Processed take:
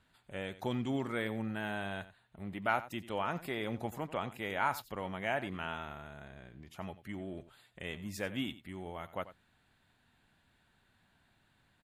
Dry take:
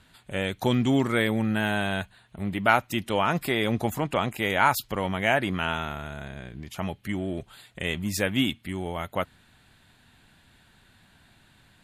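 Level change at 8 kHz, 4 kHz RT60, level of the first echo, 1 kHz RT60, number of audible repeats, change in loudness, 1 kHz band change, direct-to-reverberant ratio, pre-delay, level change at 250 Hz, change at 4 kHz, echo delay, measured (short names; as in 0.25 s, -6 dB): -15.5 dB, none, -15.5 dB, none, 1, -11.5 dB, -10.5 dB, none, none, -12.0 dB, -14.0 dB, 90 ms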